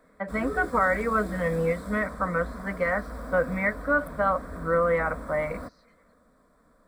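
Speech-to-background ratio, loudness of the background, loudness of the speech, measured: 12.5 dB, -39.5 LUFS, -27.0 LUFS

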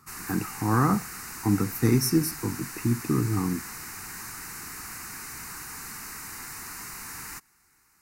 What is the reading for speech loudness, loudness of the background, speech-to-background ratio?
-26.5 LUFS, -37.0 LUFS, 10.5 dB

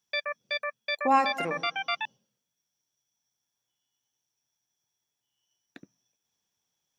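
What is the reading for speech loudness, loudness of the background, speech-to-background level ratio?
-27.5 LUFS, -32.0 LUFS, 4.5 dB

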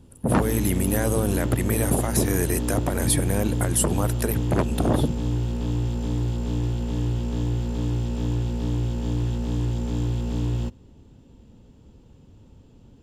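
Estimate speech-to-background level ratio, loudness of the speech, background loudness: 2.0 dB, -25.0 LUFS, -27.0 LUFS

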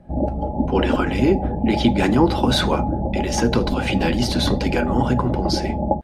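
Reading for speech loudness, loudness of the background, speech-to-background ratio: -22.0 LUFS, -24.0 LUFS, 2.0 dB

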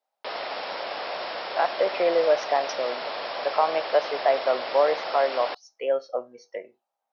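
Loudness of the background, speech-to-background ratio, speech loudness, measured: -32.0 LUFS, 6.5 dB, -25.5 LUFS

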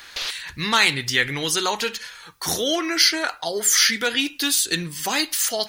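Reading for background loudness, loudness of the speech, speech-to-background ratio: -29.5 LUFS, -20.0 LUFS, 9.5 dB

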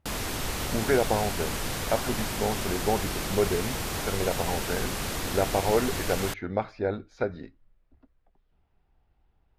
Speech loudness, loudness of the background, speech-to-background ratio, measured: -30.0 LUFS, -31.5 LUFS, 1.5 dB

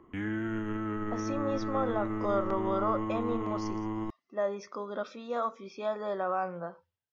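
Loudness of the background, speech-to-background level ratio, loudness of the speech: -35.0 LUFS, 1.0 dB, -34.0 LUFS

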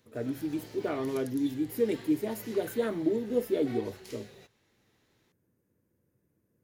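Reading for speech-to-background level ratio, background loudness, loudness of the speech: 16.0 dB, -47.5 LUFS, -31.5 LUFS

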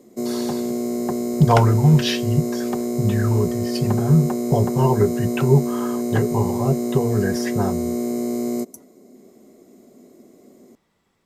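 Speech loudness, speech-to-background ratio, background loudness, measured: -20.5 LUFS, 4.0 dB, -24.5 LUFS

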